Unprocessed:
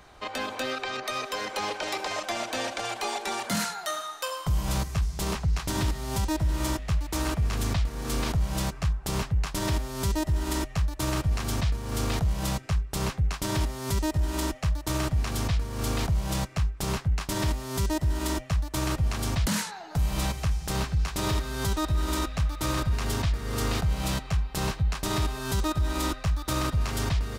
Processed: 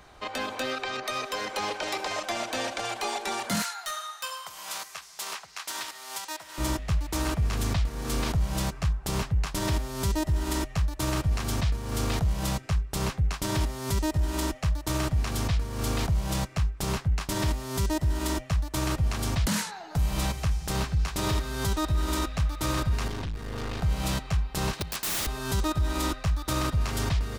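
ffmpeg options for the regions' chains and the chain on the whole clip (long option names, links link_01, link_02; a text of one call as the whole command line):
ffmpeg -i in.wav -filter_complex "[0:a]asettb=1/sr,asplit=3[link_01][link_02][link_03];[link_01]atrim=end=3.624[link_04];[link_02]atrim=start=3.62:end=6.58,asetpts=PTS-STARTPTS,afade=type=in:duration=0.004:curve=qsin,afade=type=out:start_time=2.956:duration=0.004:curve=qsin,highpass=990,aeval=exprs='0.0596*(abs(mod(val(0)/0.0596+3,4)-2)-1)':channel_layout=same[link_05];[link_03]atrim=start=6.576[link_06];[link_04][link_05]acrossfade=duration=0.004:curve1=hsin:curve2=qsin[link_07];[link_07][link_06]acrossfade=duration=0.004:curve1=qsin:curve2=hsin,asettb=1/sr,asplit=3[link_08][link_09][link_10];[link_08]atrim=end=23.084[link_11];[link_09]atrim=start=23.08:end=23.81,asetpts=PTS-STARTPTS,afade=type=in:duration=0.004:curve=qsin,afade=type=out:start_time=0.726:duration=0.004:curve=qsin,acrossover=split=4700[link_12][link_13];[link_13]acompressor=threshold=-51dB:ratio=4:attack=1:release=60[link_14];[link_12][link_14]amix=inputs=2:normalize=0,aeval=exprs='(tanh(31.6*val(0)+0.5)-tanh(0.5))/31.6':channel_layout=same,bandreject=frequency=1300:width=21[link_15];[link_10]atrim=start=23.806[link_16];[link_11][link_15]acrossfade=duration=0.004:curve1=hsin:curve2=qsin[link_17];[link_17][link_16]acrossfade=duration=0.004:curve1=qsin:curve2=hsin,asettb=1/sr,asplit=3[link_18][link_19][link_20];[link_18]atrim=end=24.734[link_21];[link_19]atrim=start=24.73:end=25.27,asetpts=PTS-STARTPTS,afade=type=in:duration=0.004:curve=qsin,afade=type=out:start_time=0.536:duration=0.004:curve=qsin,highpass=140,highshelf=frequency=2500:gain=8.5,aeval=exprs='(mod(15.8*val(0)+1,2)-1)/15.8':channel_layout=same[link_22];[link_20]atrim=start=25.266[link_23];[link_21][link_22]acrossfade=duration=0.004:curve1=hsin:curve2=qsin[link_24];[link_24][link_23]acrossfade=duration=0.004:curve1=qsin:curve2=hsin" out.wav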